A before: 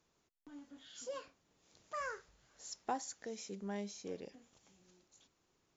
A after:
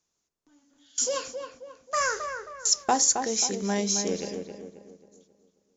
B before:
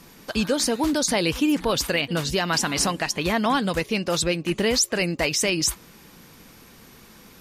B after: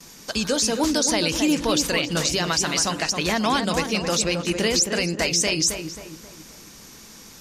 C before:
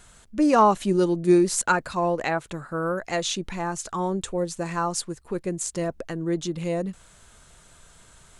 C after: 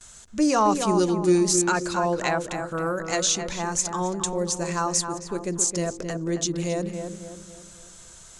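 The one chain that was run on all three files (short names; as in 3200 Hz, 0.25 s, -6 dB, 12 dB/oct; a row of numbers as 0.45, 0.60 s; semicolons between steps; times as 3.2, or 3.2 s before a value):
de-hum 47.57 Hz, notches 11; gate with hold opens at -43 dBFS; bell 6300 Hz +12.5 dB 1.1 oct; limiter -11.5 dBFS; darkening echo 0.268 s, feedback 44%, low-pass 1800 Hz, level -6 dB; normalise peaks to -9 dBFS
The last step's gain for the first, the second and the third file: +14.0, 0.0, -0.5 dB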